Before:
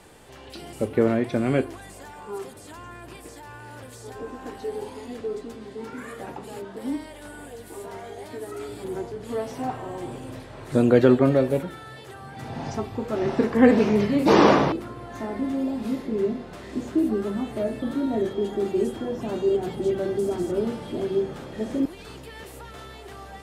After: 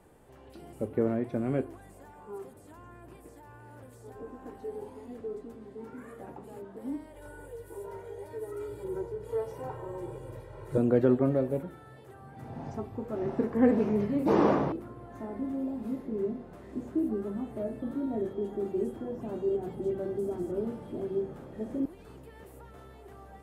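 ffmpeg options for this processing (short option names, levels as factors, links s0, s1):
-filter_complex "[0:a]asettb=1/sr,asplit=3[s0][s1][s2];[s0]atrim=end=7.164[s3];[s1]atrim=start=7.16:end=10.78,asetpts=PTS-STARTPTS,afade=t=in:d=0.004:c=qsin,afade=t=out:st=3.616:d=0.004:c=qsin,aecho=1:1:2.1:0.98,atrim=end_sample=159642[s4];[s2]atrim=start=10.776[s5];[s3][s4]acrossfade=d=0.004:c1=hsin:c2=qsin[s6];[s6][s5]acrossfade=d=0.004:c1=qsin:c2=hsin,equalizer=f=4300:t=o:w=2.6:g=-14,volume=0.473"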